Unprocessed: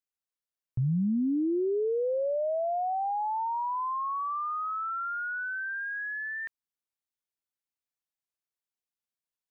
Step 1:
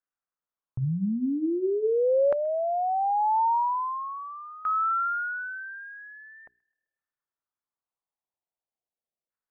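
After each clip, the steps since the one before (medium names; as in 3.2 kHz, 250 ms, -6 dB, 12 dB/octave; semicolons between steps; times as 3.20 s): hum notches 60/120/180/240/300/360/420 Hz; LFO low-pass saw down 0.43 Hz 580–1500 Hz; feedback echo behind a high-pass 129 ms, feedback 48%, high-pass 1.8 kHz, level -23 dB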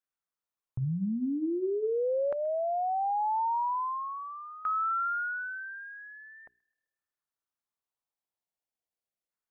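compression, threshold -25 dBFS, peak gain reduction 5.5 dB; trim -2 dB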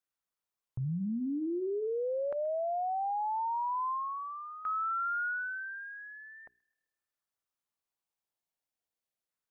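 peak limiter -29.5 dBFS, peak gain reduction 5.5 dB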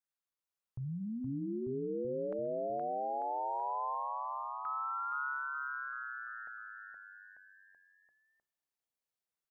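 bouncing-ball echo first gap 470 ms, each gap 0.9×, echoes 5; trim -5.5 dB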